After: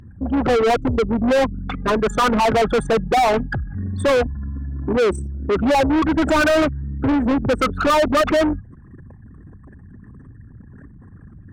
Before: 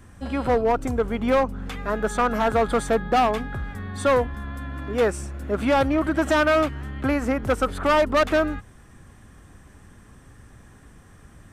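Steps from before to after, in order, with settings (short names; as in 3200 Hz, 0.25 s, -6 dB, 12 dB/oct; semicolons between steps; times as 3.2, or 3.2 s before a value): formant sharpening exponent 3; overdrive pedal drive 31 dB, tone 4400 Hz, clips at -10.5 dBFS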